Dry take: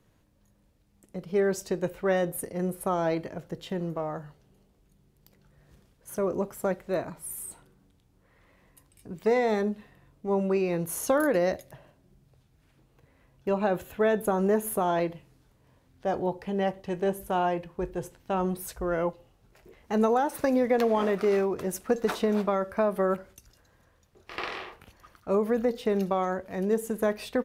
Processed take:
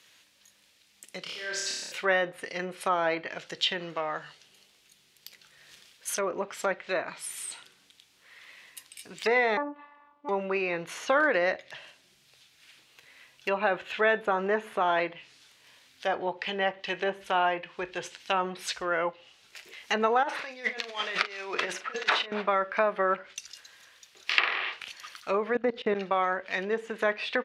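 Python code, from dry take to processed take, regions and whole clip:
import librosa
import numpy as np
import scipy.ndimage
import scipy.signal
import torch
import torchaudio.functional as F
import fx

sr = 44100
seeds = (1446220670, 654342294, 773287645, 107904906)

y = fx.chain(x, sr, fx.low_shelf(hz=140.0, db=-5.0),
    fx.auto_swell(attack_ms=708.0),
    fx.room_flutter(wall_m=4.9, rt60_s=1.0), at=(1.22, 1.92))
y = fx.chain(y, sr, fx.lowpass_res(hz=1000.0, q=7.1),
    fx.robotise(hz=290.0), at=(9.57, 10.29))
y = fx.chain(y, sr, fx.over_compress(threshold_db=-31.0, ratio=-0.5),
    fx.highpass(hz=370.0, slope=6),
    fx.doubler(ms=39.0, db=-12.0), at=(20.23, 22.32))
y = fx.chain(y, sr, fx.low_shelf(hz=440.0, db=11.5),
    fx.level_steps(step_db=20), at=(25.55, 25.95))
y = fx.weighting(y, sr, curve='D')
y = fx.env_lowpass_down(y, sr, base_hz=1500.0, full_db=-25.5)
y = fx.tilt_shelf(y, sr, db=-9.5, hz=640.0)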